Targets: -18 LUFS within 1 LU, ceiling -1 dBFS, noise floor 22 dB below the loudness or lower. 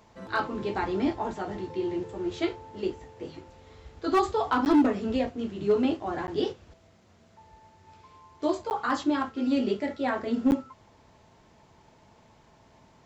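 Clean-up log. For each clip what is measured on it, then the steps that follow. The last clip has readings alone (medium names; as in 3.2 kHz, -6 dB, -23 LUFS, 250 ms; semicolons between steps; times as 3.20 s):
clipped samples 0.4%; clipping level -16.0 dBFS; dropouts 4; longest dropout 9.9 ms; loudness -28.5 LUFS; peak level -16.0 dBFS; loudness target -18.0 LUFS
-> clip repair -16 dBFS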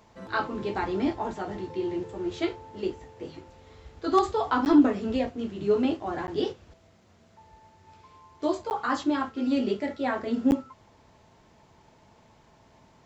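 clipped samples 0.0%; dropouts 4; longest dropout 9.9 ms
-> interpolate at 4.65/6.27/8.70/10.51 s, 9.9 ms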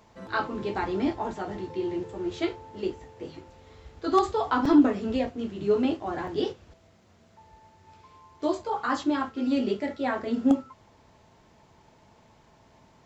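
dropouts 0; loudness -27.5 LUFS; peak level -8.5 dBFS; loudness target -18.0 LUFS
-> trim +9.5 dB; peak limiter -1 dBFS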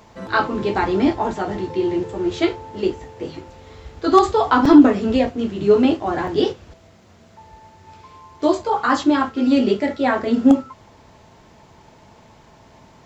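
loudness -18.5 LUFS; peak level -1.0 dBFS; noise floor -50 dBFS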